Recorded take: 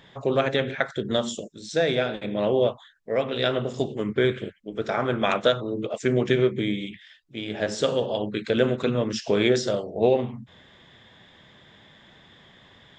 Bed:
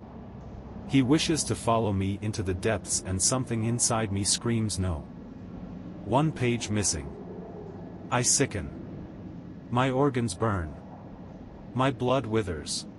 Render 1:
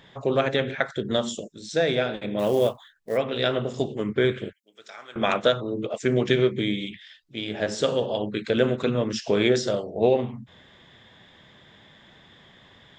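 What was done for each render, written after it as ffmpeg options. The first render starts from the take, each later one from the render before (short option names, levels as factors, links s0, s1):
-filter_complex "[0:a]asplit=3[s0][s1][s2];[s0]afade=t=out:st=2.38:d=0.02[s3];[s1]acrusher=bits=6:mode=log:mix=0:aa=0.000001,afade=t=in:st=2.38:d=0.02,afade=t=out:st=3.16:d=0.02[s4];[s2]afade=t=in:st=3.16:d=0.02[s5];[s3][s4][s5]amix=inputs=3:normalize=0,asettb=1/sr,asplit=3[s6][s7][s8];[s6]atrim=end=4.534[s9];[s7]atrim=start=4.53:end=5.16,asetpts=PTS-STARTPTS,afade=t=in:d=0.004:c=qsin,afade=t=out:st=0.626:d=0.004:c=qsin,aderivative[s10];[s8]atrim=start=5.156[s11];[s9][s10]acrossfade=d=0.004:c1=hsin:c2=qsin[s12];[s12][s11]acrossfade=d=0.004:c1=qsin:c2=hsin,asettb=1/sr,asplit=3[s13][s14][s15];[s13]atrim=end=6.124[s16];[s14]atrim=start=6.12:end=7.5,asetpts=PTS-STARTPTS,afade=t=in:d=0.004:c=qsin,afade=t=out:st=1.376:d=0.004:c=qsin,equalizer=f=4300:w=1.1:g=5[s17];[s15]atrim=start=7.496[s18];[s16][s17]acrossfade=d=0.004:c1=hsin:c2=qsin[s19];[s19][s18]acrossfade=d=0.004:c1=qsin:c2=hsin"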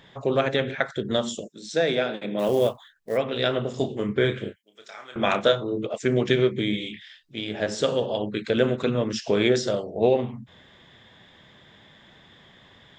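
-filter_complex "[0:a]asettb=1/sr,asplit=3[s0][s1][s2];[s0]atrim=end=1.494[s3];[s1]atrim=start=1.49:end=2.49,asetpts=PTS-STARTPTS,afade=t=in:d=0.004:c=qsin,afade=t=out:st=0.996:d=0.004:c=qsin,highpass=f=150:w=0.5412,highpass=f=150:w=1.3066[s4];[s2]atrim=start=2.486[s5];[s3][s4]acrossfade=d=0.004:c1=hsin:c2=qsin[s6];[s6][s5]acrossfade=d=0.004:c1=qsin:c2=hsin,asettb=1/sr,asplit=3[s7][s8][s9];[s7]atrim=end=3.784[s10];[s8]atrim=start=3.78:end=5.78,asetpts=PTS-STARTPTS,afade=t=in:d=0.004:c=qsin,afade=t=out:st=1.996:d=0.004:c=qsin,asplit=2[s11][s12];[s12]adelay=30,volume=0.422[s13];[s11][s13]amix=inputs=2:normalize=0,atrim=end_sample=88200[s14];[s9]atrim=start=5.776[s15];[s10][s14]acrossfade=d=0.004:c1=hsin:c2=qsin[s16];[s16][s15]acrossfade=d=0.004:c1=qsin:c2=hsin,asettb=1/sr,asplit=3[s17][s18][s19];[s17]atrim=end=6.704[s20];[s18]atrim=start=6.7:end=7.4,asetpts=PTS-STARTPTS,afade=t=in:d=0.004:c=qsin,afade=t=out:st=0.696:d=0.004:c=qsin,asplit=2[s21][s22];[s22]adelay=28,volume=0.596[s23];[s21][s23]amix=inputs=2:normalize=0,atrim=end_sample=30870[s24];[s19]atrim=start=7.396[s25];[s20][s24]acrossfade=d=0.004:c1=hsin:c2=qsin[s26];[s26][s25]acrossfade=d=0.004:c1=qsin:c2=hsin"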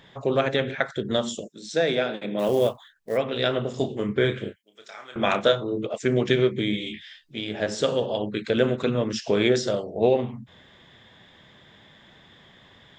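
-filter_complex "[0:a]asettb=1/sr,asplit=3[s0][s1][s2];[s0]atrim=end=6.854[s3];[s1]atrim=start=6.85:end=7.37,asetpts=PTS-STARTPTS,afade=t=in:d=0.004:c=qsin,afade=t=out:st=0.516:d=0.004:c=qsin,asplit=2[s4][s5];[s5]adelay=13,volume=0.708[s6];[s4][s6]amix=inputs=2:normalize=0,atrim=end_sample=22932[s7];[s2]atrim=start=7.366[s8];[s3][s7]acrossfade=d=0.004:c1=hsin:c2=qsin[s9];[s9][s8]acrossfade=d=0.004:c1=qsin:c2=hsin"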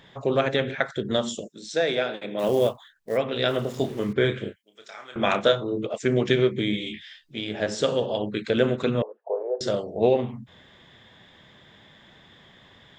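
-filter_complex "[0:a]asettb=1/sr,asplit=3[s0][s1][s2];[s0]atrim=end=1.644[s3];[s1]atrim=start=1.64:end=2.44,asetpts=PTS-STARTPTS,afade=t=in:d=0.004:c=qsin,afade=t=out:st=0.796:d=0.004:c=qsin,equalizer=f=190:w=1.1:g=-6.5[s4];[s2]atrim=start=2.436[s5];[s3][s4]acrossfade=d=0.004:c1=hsin:c2=qsin[s6];[s6][s5]acrossfade=d=0.004:c1=qsin:c2=hsin,asettb=1/sr,asplit=3[s7][s8][s9];[s7]atrim=end=3.484[s10];[s8]atrim=start=3.48:end=4.13,asetpts=PTS-STARTPTS,afade=t=in:d=0.004:c=qsin,afade=t=out:st=0.646:d=0.004:c=qsin,aeval=exprs='val(0)*gte(abs(val(0)),0.00891)':c=same[s11];[s9]atrim=start=4.126[s12];[s10][s11]acrossfade=d=0.004:c1=hsin:c2=qsin[s13];[s13][s12]acrossfade=d=0.004:c1=qsin:c2=hsin,asettb=1/sr,asplit=3[s14][s15][s16];[s14]atrim=end=9.024[s17];[s15]atrim=start=9.02:end=9.61,asetpts=PTS-STARTPTS,afade=t=in:d=0.004:c=qsin,afade=t=out:st=0.586:d=0.004:c=qsin,asuperpass=centerf=660:order=8:qfactor=1.3[s18];[s16]atrim=start=9.606[s19];[s17][s18]acrossfade=d=0.004:c1=hsin:c2=qsin[s20];[s20][s19]acrossfade=d=0.004:c1=qsin:c2=hsin"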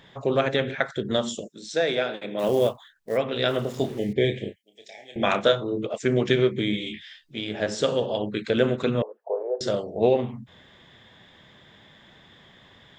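-filter_complex "[0:a]asettb=1/sr,asplit=3[s0][s1][s2];[s0]atrim=end=3.984[s3];[s1]atrim=start=3.98:end=5.23,asetpts=PTS-STARTPTS,afade=t=in:d=0.004:c=qsin,afade=t=out:st=1.246:d=0.004:c=qsin,asuperstop=centerf=1200:order=12:qfactor=1.3[s4];[s2]atrim=start=5.226[s5];[s3][s4]acrossfade=d=0.004:c1=hsin:c2=qsin[s6];[s6][s5]acrossfade=d=0.004:c1=qsin:c2=hsin"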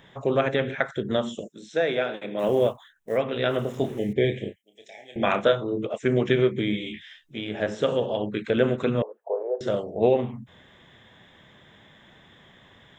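-filter_complex "[0:a]acrossover=split=4100[s0][s1];[s1]acompressor=threshold=0.00355:ratio=4:attack=1:release=60[s2];[s0][s2]amix=inputs=2:normalize=0,equalizer=f=4600:t=o:w=0.33:g=-14"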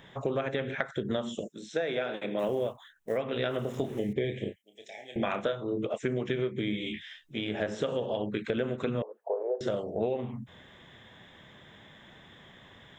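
-af "acompressor=threshold=0.0447:ratio=6"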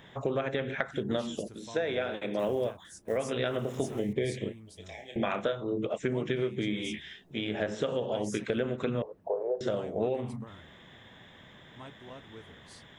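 -filter_complex "[1:a]volume=0.075[s0];[0:a][s0]amix=inputs=2:normalize=0"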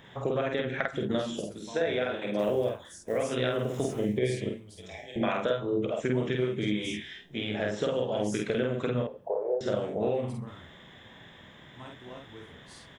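-filter_complex "[0:a]asplit=2[s0][s1];[s1]adelay=48,volume=0.75[s2];[s0][s2]amix=inputs=2:normalize=0,aecho=1:1:69|138|207:0.0794|0.0397|0.0199"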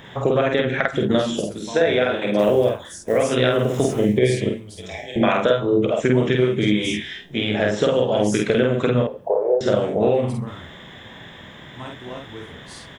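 -af "volume=3.35,alimiter=limit=0.708:level=0:latency=1"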